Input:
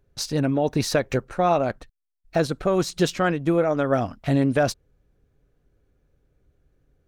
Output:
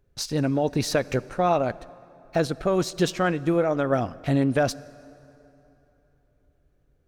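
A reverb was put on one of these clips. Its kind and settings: plate-style reverb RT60 3.3 s, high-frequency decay 0.65×, DRR 19.5 dB; gain -1.5 dB

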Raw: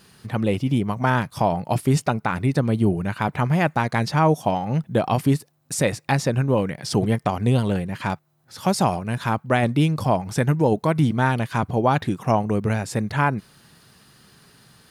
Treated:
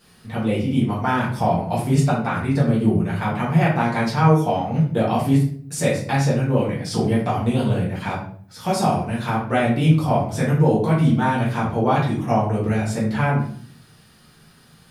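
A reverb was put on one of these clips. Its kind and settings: shoebox room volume 61 m³, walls mixed, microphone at 1.6 m; gain -7.5 dB

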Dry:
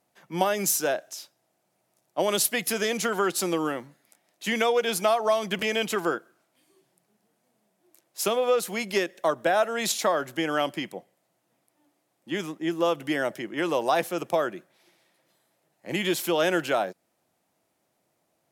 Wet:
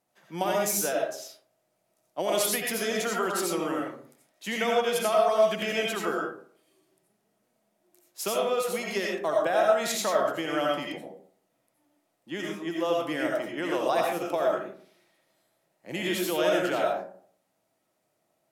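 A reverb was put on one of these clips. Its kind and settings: digital reverb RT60 0.54 s, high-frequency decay 0.45×, pre-delay 45 ms, DRR -1.5 dB; gain -5.5 dB

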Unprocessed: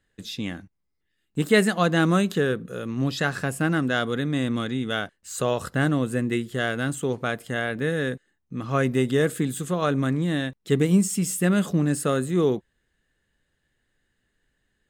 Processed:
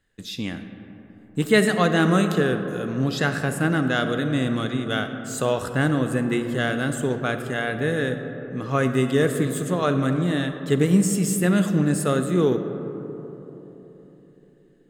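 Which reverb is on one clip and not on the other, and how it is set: digital reverb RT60 3.9 s, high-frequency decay 0.3×, pre-delay 10 ms, DRR 7.5 dB; gain +1 dB

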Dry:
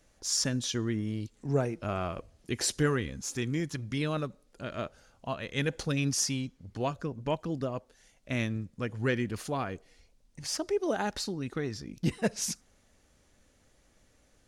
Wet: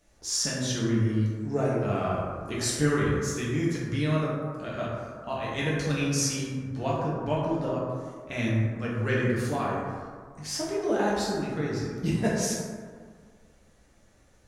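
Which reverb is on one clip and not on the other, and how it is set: plate-style reverb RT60 1.8 s, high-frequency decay 0.35×, DRR -6.5 dB; gain -3 dB

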